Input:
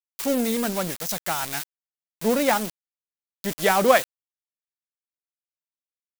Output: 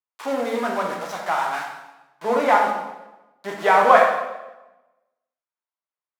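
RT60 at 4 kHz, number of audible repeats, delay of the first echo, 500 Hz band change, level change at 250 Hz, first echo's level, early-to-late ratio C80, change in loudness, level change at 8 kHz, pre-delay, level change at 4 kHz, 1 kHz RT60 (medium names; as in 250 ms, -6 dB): 0.90 s, no echo, no echo, +2.5 dB, -4.5 dB, no echo, 5.5 dB, +3.0 dB, under -10 dB, 3 ms, -4.5 dB, 1.0 s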